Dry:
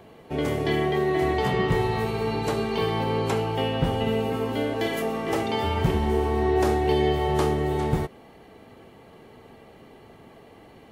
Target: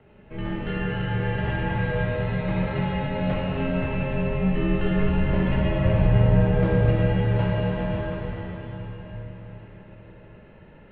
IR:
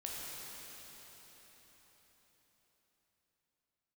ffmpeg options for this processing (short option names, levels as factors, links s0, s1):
-filter_complex "[0:a]asettb=1/sr,asplit=3[s0][s1][s2];[s0]atrim=end=4.314[s3];[s1]atrim=start=4.31:end=6.79,asetpts=PTS-STARTPTS,afade=t=in:d=0.004:c=qsin,afade=t=out:st=2.476:d=0.004:c=qsin,lowshelf=f=430:g=11.5[s4];[s2]atrim=start=6.786[s5];[s3][s4]acrossfade=d=0.004:c1=hsin:c2=qsin[s6];[s6][s5]acrossfade=d=0.004:c1=qsin:c2=hsin[s7];[1:a]atrim=start_sample=2205[s8];[s7][s8]afir=irnorm=-1:irlink=0,highpass=f=160:t=q:w=0.5412,highpass=f=160:t=q:w=1.307,lowpass=f=3300:t=q:w=0.5176,lowpass=f=3300:t=q:w=0.7071,lowpass=f=3300:t=q:w=1.932,afreqshift=-260"